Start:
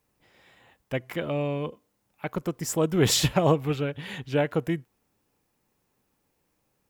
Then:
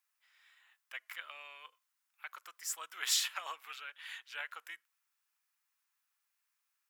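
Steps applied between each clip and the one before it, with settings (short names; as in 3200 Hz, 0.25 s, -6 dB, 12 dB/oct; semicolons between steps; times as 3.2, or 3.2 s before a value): Chebyshev high-pass 1300 Hz, order 3; gain -6 dB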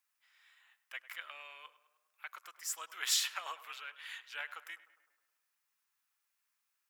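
tape echo 0.103 s, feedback 64%, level -15 dB, low-pass 2500 Hz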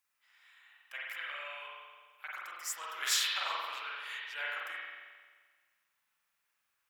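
reverb RT60 1.5 s, pre-delay 43 ms, DRR -5 dB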